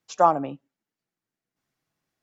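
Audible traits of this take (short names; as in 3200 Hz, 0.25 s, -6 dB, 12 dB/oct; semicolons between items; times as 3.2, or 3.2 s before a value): noise floor -90 dBFS; spectral tilt -2.5 dB/oct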